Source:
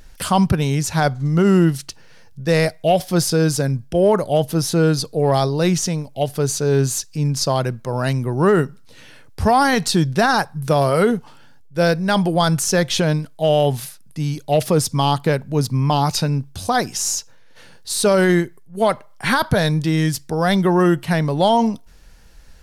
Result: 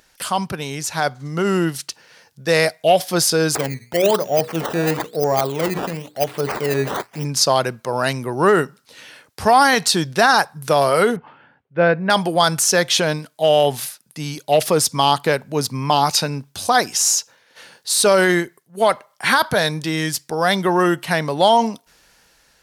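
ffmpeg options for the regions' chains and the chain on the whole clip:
-filter_complex "[0:a]asettb=1/sr,asplit=3[s0][s1][s2];[s0]atrim=end=3.554[s3];[s1]atrim=start=3.55:end=7.25,asetpts=PTS-STARTPTS,afade=t=in:d=0.004:c=qsin,afade=t=out:st=3.696:d=0.004:c=qsin,bandreject=f=60:t=h:w=6,bandreject=f=120:t=h:w=6,bandreject=f=180:t=h:w=6,bandreject=f=240:t=h:w=6,bandreject=f=300:t=h:w=6,bandreject=f=360:t=h:w=6,bandreject=f=420:t=h:w=6,bandreject=f=480:t=h:w=6,acrusher=samples=14:mix=1:aa=0.000001:lfo=1:lforange=14:lforate=1,deesser=0.8[s4];[s2]atrim=start=7.246[s5];[s3][s4]acrossfade=d=0.004:c1=hsin:c2=qsin[s6];[s6][s5]acrossfade=d=0.004:c1=qsin:c2=hsin,asettb=1/sr,asplit=3[s7][s8][s9];[s7]atrim=end=11.164[s10];[s8]atrim=start=11.16:end=12.1,asetpts=PTS-STARTPTS,afade=t=in:d=0.004:c=qsin,afade=t=out:st=0.936:d=0.004:c=qsin,lowpass=f=2500:w=0.5412,lowpass=f=2500:w=1.3066,lowshelf=f=190:g=6.5[s11];[s9]atrim=start=12.096[s12];[s10][s11]acrossfade=d=0.004:c1=hsin:c2=qsin[s13];[s13][s12]acrossfade=d=0.004:c1=qsin:c2=hsin,highpass=f=590:p=1,dynaudnorm=f=520:g=5:m=3.76,volume=0.891"

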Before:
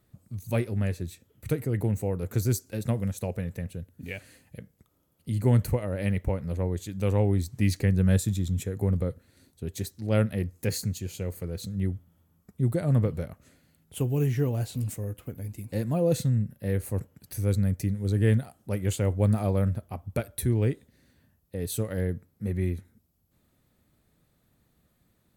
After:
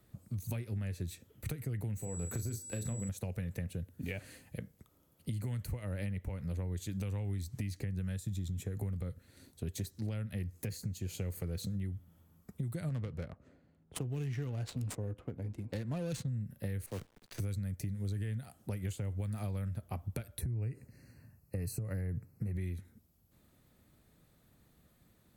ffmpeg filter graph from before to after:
-filter_complex "[0:a]asettb=1/sr,asplit=3[s0][s1][s2];[s0]atrim=end=1.984[s3];[s1]atrim=start=1.98:end=3.09,asetpts=PTS-STARTPTS,afade=t=in:d=0.004:c=qsin,afade=t=out:st=1.106:d=0.004:c=qsin,acompressor=threshold=0.0224:ratio=3:attack=3.2:release=140:knee=1:detection=peak,aeval=exprs='val(0)+0.00562*sin(2*PI*7800*n/s)':c=same,asplit=2[s4][s5];[s5]adelay=35,volume=0.398[s6];[s4][s6]amix=inputs=2:normalize=0,atrim=end_sample=48951[s7];[s2]atrim=start=3.086[s8];[s3][s7]acrossfade=d=0.004:c1=hsin:c2=qsin[s9];[s9][s8]acrossfade=d=0.004:c1=qsin:c2=hsin,asettb=1/sr,asplit=3[s10][s11][s12];[s10]atrim=end=12.894[s13];[s11]atrim=start=12.89:end=16.28,asetpts=PTS-STARTPTS,afade=t=in:d=0.004:c=qsin,afade=t=out:st=3.386:d=0.004:c=qsin,bass=f=250:g=-5,treble=f=4000:g=11,adynamicsmooth=sensitivity=7:basefreq=1100[s14];[s12]atrim=start=16.276[s15];[s13][s14]acrossfade=d=0.004:c1=hsin:c2=qsin[s16];[s16][s15]acrossfade=d=0.004:c1=qsin:c2=hsin,asettb=1/sr,asplit=3[s17][s18][s19];[s17]atrim=end=16.864[s20];[s18]atrim=start=16.86:end=17.4,asetpts=PTS-STARTPTS,afade=t=in:d=0.004:c=qsin,afade=t=out:st=0.536:d=0.004:c=qsin,acrossover=split=240 5600:gain=0.224 1 0.0794[s21][s22][s23];[s21][s22][s23]amix=inputs=3:normalize=0,acrusher=bits=8:dc=4:mix=0:aa=0.000001[s24];[s19]atrim=start=17.396[s25];[s20][s24]acrossfade=d=0.004:c1=hsin:c2=qsin[s26];[s26][s25]acrossfade=d=0.004:c1=qsin:c2=hsin,asettb=1/sr,asplit=3[s27][s28][s29];[s27]atrim=end=20.414[s30];[s28]atrim=start=20.41:end=22.57,asetpts=PTS-STARTPTS,afade=t=in:d=0.004:c=qsin,afade=t=out:st=2.156:d=0.004:c=qsin,equalizer=f=120:t=o:w=0.68:g=10.5,acompressor=threshold=0.0562:ratio=6:attack=3.2:release=140:knee=1:detection=peak,asuperstop=centerf=3400:order=20:qfactor=2.8[s31];[s29]atrim=start=22.566[s32];[s30][s31]acrossfade=d=0.004:c1=hsin:c2=qsin[s33];[s33][s32]acrossfade=d=0.004:c1=qsin:c2=hsin,acrossover=split=190|1400[s34][s35][s36];[s34]acompressor=threshold=0.0447:ratio=4[s37];[s35]acompressor=threshold=0.00891:ratio=4[s38];[s36]acompressor=threshold=0.00708:ratio=4[s39];[s37][s38][s39]amix=inputs=3:normalize=0,alimiter=level_in=1.19:limit=0.0631:level=0:latency=1:release=434,volume=0.841,acompressor=threshold=0.0178:ratio=6,volume=1.19"

